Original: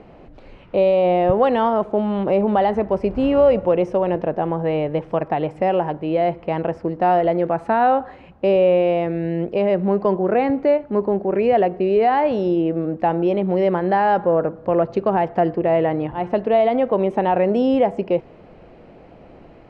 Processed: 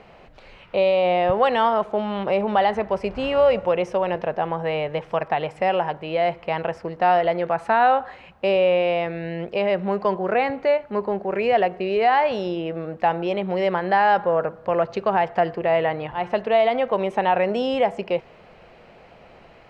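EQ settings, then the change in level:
tilt shelving filter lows −6.5 dB, about 820 Hz
parametric band 300 Hz −8.5 dB 0.41 octaves
0.0 dB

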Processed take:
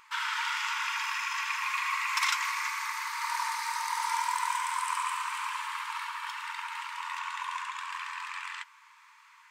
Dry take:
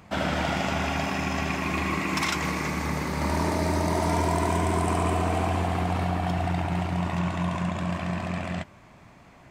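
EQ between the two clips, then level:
linear-phase brick-wall high-pass 870 Hz
0.0 dB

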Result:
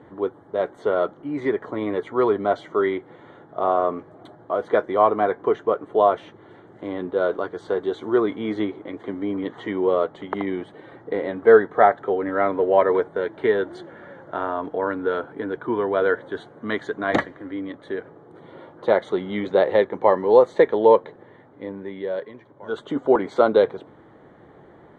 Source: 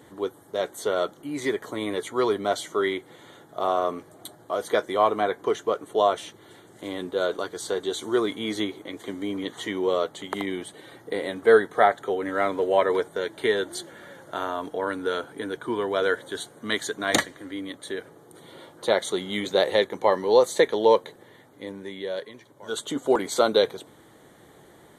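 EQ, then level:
low-pass filter 1,600 Hz 12 dB per octave
+4.0 dB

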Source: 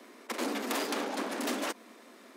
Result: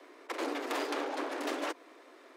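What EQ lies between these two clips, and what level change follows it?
Butterworth high-pass 280 Hz 72 dB per octave
low-pass filter 2,900 Hz 6 dB per octave
0.0 dB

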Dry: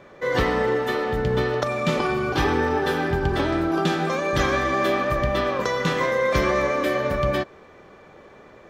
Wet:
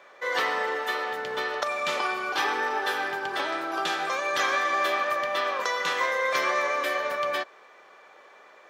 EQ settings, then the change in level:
high-pass filter 770 Hz 12 dB per octave
0.0 dB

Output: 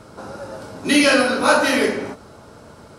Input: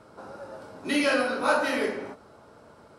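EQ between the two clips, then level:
low-shelf EQ 260 Hz +9.5 dB
high-shelf EQ 2,300 Hz +8.5 dB
parametric band 6,400 Hz +2.5 dB 0.27 octaves
+5.5 dB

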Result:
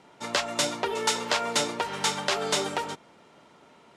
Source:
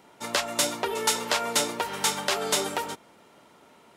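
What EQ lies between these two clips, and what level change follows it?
low-pass filter 7,300 Hz 12 dB per octave
parametric band 150 Hz +4 dB 0.29 octaves
0.0 dB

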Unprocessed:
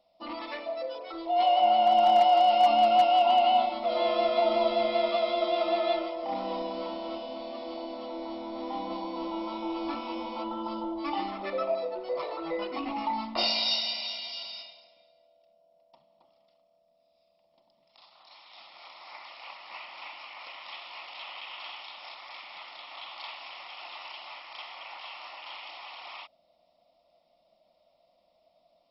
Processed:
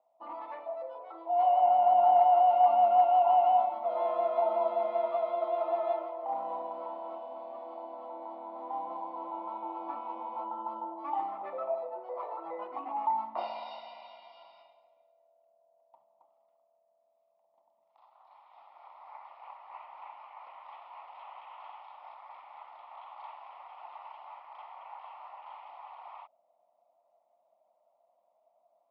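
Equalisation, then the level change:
resonant band-pass 880 Hz, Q 2.7
high-frequency loss of the air 300 metres
+3.0 dB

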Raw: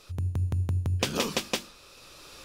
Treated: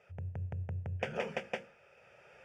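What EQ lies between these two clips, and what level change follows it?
band-pass filter 140–2,300 Hz
mains-hum notches 60/120/180/240/300/360/420/480/540 Hz
phaser with its sweep stopped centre 1,100 Hz, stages 6
−2.0 dB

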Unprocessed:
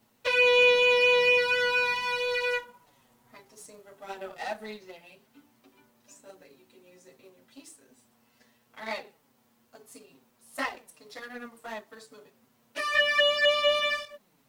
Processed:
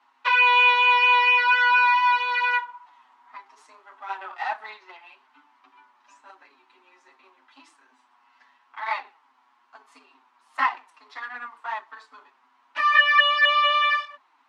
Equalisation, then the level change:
Chebyshev high-pass with heavy ripple 250 Hz, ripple 3 dB
low-pass filter 3,100 Hz 12 dB per octave
low shelf with overshoot 700 Hz −11 dB, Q 3
+7.5 dB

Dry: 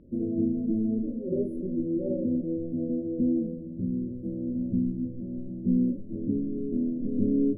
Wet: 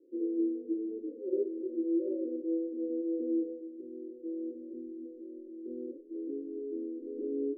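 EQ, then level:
elliptic high-pass filter 320 Hz, stop band 40 dB
Chebyshev low-pass filter 510 Hz, order 6
0.0 dB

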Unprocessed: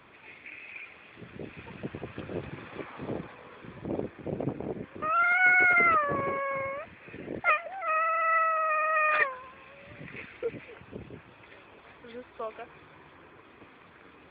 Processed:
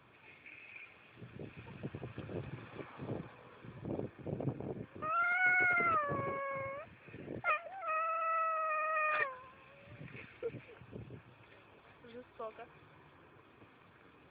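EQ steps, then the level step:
parametric band 120 Hz +7.5 dB 0.69 octaves
notch filter 2,000 Hz, Q 11
−8.0 dB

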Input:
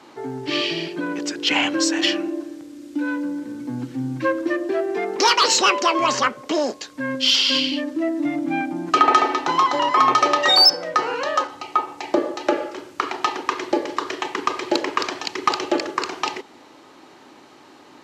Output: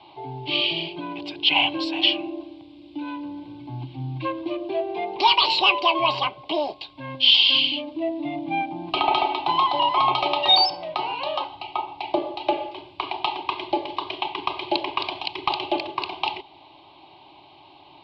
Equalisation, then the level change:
low-pass filter 3,900 Hz 24 dB per octave
phaser with its sweep stopped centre 560 Hz, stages 4
phaser with its sweep stopped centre 1,800 Hz, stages 6
+6.5 dB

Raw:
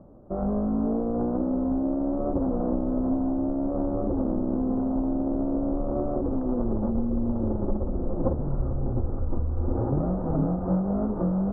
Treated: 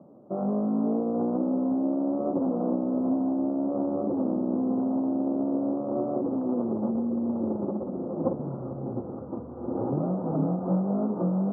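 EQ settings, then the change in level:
high-pass filter 150 Hz 24 dB per octave
low-pass filter 1,300 Hz 24 dB per octave
0.0 dB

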